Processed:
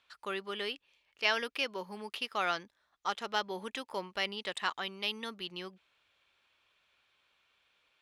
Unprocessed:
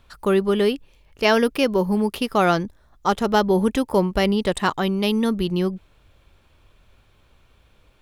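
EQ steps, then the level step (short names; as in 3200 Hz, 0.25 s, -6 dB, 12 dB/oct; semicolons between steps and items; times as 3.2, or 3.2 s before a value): band-pass 2800 Hz, Q 0.81; -6.0 dB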